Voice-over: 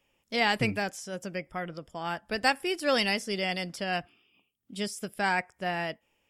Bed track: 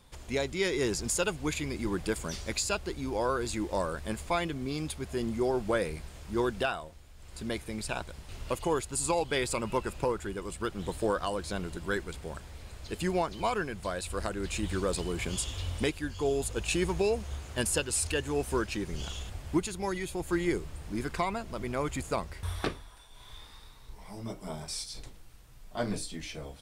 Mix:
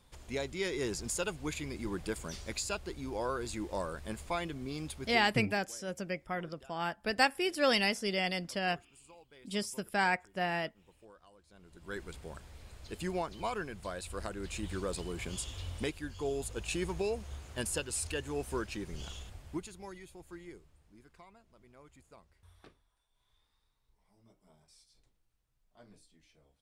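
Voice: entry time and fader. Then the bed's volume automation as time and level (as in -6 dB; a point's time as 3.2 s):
4.75 s, -2.0 dB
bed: 5.11 s -5.5 dB
5.43 s -28.5 dB
11.47 s -28.5 dB
12.03 s -6 dB
19.12 s -6 dB
21.04 s -26 dB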